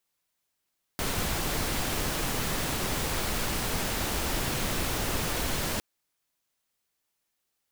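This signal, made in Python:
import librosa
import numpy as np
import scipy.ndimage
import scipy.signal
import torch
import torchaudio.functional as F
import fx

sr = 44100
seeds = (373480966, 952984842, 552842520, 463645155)

y = fx.noise_colour(sr, seeds[0], length_s=4.81, colour='pink', level_db=-29.5)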